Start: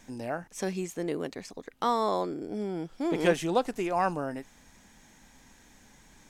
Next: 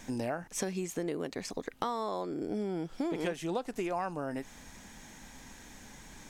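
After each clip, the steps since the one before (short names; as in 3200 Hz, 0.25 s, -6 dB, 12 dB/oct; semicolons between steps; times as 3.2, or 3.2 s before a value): compressor 8:1, threshold -37 dBFS, peak gain reduction 18.5 dB; gain +6 dB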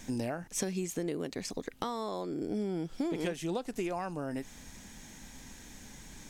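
bell 1000 Hz -6 dB 2.5 oct; gain +2.5 dB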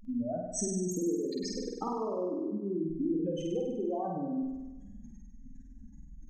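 spectral contrast raised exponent 3.7; flutter echo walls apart 8.5 m, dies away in 1.1 s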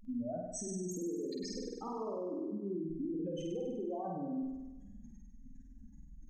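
limiter -27 dBFS, peak gain reduction 8 dB; gain -4 dB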